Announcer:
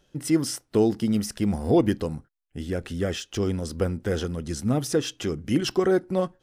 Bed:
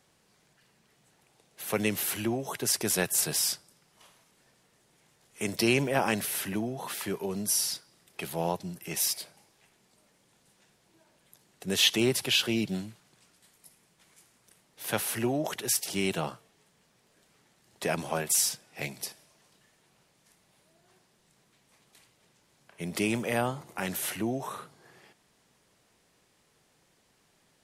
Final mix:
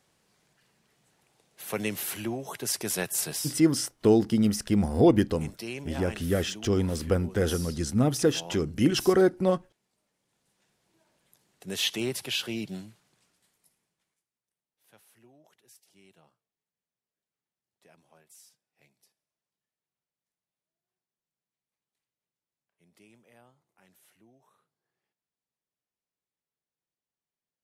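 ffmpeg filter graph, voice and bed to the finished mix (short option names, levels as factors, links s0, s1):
-filter_complex "[0:a]adelay=3300,volume=1.06[s0];[1:a]volume=1.78,afade=t=out:st=3.29:d=0.27:silence=0.316228,afade=t=in:st=10.14:d=0.87:silence=0.421697,afade=t=out:st=12.97:d=1.27:silence=0.0562341[s1];[s0][s1]amix=inputs=2:normalize=0"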